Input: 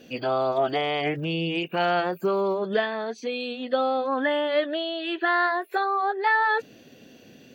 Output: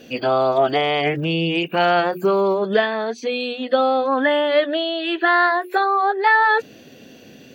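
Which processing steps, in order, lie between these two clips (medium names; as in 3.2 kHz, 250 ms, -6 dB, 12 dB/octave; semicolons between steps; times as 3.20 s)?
hum notches 60/120/180/240/300/360 Hz; trim +6.5 dB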